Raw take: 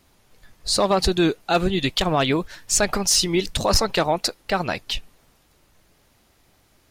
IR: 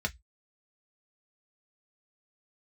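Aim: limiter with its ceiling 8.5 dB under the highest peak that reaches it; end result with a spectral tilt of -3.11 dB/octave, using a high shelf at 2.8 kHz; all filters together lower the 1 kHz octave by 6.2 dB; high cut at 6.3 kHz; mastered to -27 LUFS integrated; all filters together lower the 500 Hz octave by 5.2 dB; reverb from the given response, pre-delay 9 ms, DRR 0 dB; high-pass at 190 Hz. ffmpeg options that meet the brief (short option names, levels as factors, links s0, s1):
-filter_complex "[0:a]highpass=190,lowpass=6300,equalizer=f=500:t=o:g=-5,equalizer=f=1000:t=o:g=-7.5,highshelf=f=2800:g=5.5,alimiter=limit=0.2:level=0:latency=1,asplit=2[s0][s1];[1:a]atrim=start_sample=2205,adelay=9[s2];[s1][s2]afir=irnorm=-1:irlink=0,volume=0.531[s3];[s0][s3]amix=inputs=2:normalize=0,volume=0.631"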